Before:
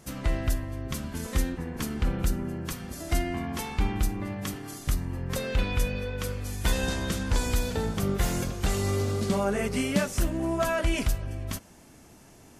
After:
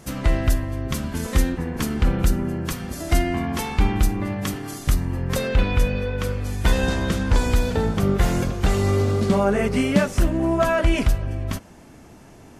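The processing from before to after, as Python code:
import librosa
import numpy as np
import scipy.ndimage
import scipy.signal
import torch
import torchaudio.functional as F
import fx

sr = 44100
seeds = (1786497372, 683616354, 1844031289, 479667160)

y = fx.high_shelf(x, sr, hz=4000.0, db=fx.steps((0.0, -3.0), (5.47, -10.0)))
y = y * librosa.db_to_amplitude(7.5)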